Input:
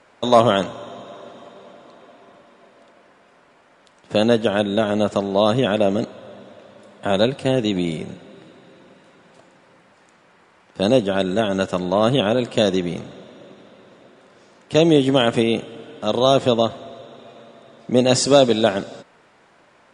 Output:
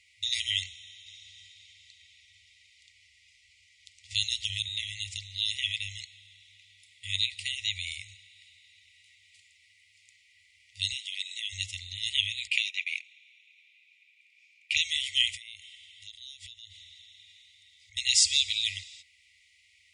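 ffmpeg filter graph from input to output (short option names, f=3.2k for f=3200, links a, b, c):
-filter_complex "[0:a]asettb=1/sr,asplit=3[a][b][c];[a]atrim=end=1.064[d];[b]atrim=start=1.06:end=4.69,asetpts=PTS-STARTPTS,afade=t=in:d=0.004:c=qsin,afade=t=out:st=3.626:d=0.004:c=qsin,lowpass=7k,bass=f=250:g=7,treble=f=4k:g=8,acrossover=split=130|3000[e][f][g];[f]acompressor=threshold=-20dB:ratio=6:attack=3.2:release=140:knee=2.83:detection=peak[h];[e][h][g]amix=inputs=3:normalize=0[i];[c]atrim=start=4.686[j];[d][i]acrossfade=d=0.004:c1=hsin:c2=qsin[k];[k][j]acrossfade=d=0.004:c1=qsin:c2=hsin,asettb=1/sr,asplit=3[l][m][n];[l]atrim=end=10.924[o];[m]atrim=start=10.92:end=11.53,asetpts=PTS-STARTPTS,afade=t=in:d=0.004:c=qsin,afade=t=out:st=0.606:d=0.004:c=qsin,highpass=f=540:w=0.5412,highpass=f=540:w=1.3066,acompressor=threshold=-21dB:ratio=2.5:attack=3.2:release=140:knee=1:detection=peak[p];[n]atrim=start=11.526[q];[o][p]acrossfade=d=0.004:c1=hsin:c2=qsin[r];[r][q]acrossfade=d=0.004:c1=qsin:c2=hsin,asettb=1/sr,asplit=3[s][t][u];[s]atrim=end=12.474[v];[t]atrim=start=12.47:end=14.77,asetpts=PTS-STARTPTS,afade=t=in:d=0.004:c=qsin,afade=t=out:st=2.296:d=0.004:c=qsin,acompressor=threshold=-30dB:ratio=2:attack=3.2:release=140:knee=1:detection=peak,highpass=f=2.4k:t=q:w=13,agate=range=-15dB:threshold=-37dB:ratio=16:release=100:detection=peak[w];[u]atrim=start=14.766[x];[v][w]acrossfade=d=0.004:c1=hsin:c2=qsin[y];[y][x]acrossfade=d=0.004:c1=qsin:c2=hsin,asettb=1/sr,asplit=3[z][aa][ab];[z]atrim=end=15.354[ac];[aa]atrim=start=15.35:end=17.97,asetpts=PTS-STARTPTS,afade=t=in:d=0.004:c=qsin,afade=t=out:st=2.616:d=0.004:c=qsin,equalizer=f=2.5k:t=o:w=0.2:g=-5.5,acompressor=threshold=-29dB:ratio=12:attack=3.2:release=140:knee=1:detection=peak[ad];[ab]atrim=start=17.966[ae];[ac][ad]acrossfade=d=0.004:c1=hsin:c2=qsin[af];[af][ae]acrossfade=d=0.004:c1=qsin:c2=hsin,highpass=54,lowshelf=f=320:g=-5,afftfilt=real='re*(1-between(b*sr/4096,100,1900))':imag='im*(1-between(b*sr/4096,100,1900))':win_size=4096:overlap=0.75"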